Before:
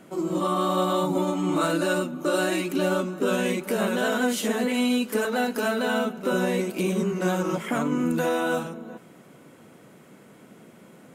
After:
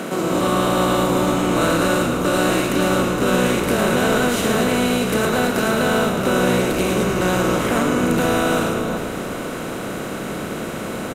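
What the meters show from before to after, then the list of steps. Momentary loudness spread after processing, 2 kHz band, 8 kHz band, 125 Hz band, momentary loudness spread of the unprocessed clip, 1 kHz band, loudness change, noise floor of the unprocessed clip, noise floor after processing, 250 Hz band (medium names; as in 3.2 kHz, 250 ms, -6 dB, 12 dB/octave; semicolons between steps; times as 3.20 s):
10 LU, +7.5 dB, +9.0 dB, +9.0 dB, 3 LU, +7.5 dB, +6.0 dB, -51 dBFS, -28 dBFS, +6.0 dB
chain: spectral levelling over time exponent 0.4; frequency-shifting echo 109 ms, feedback 53%, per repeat -59 Hz, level -6.5 dB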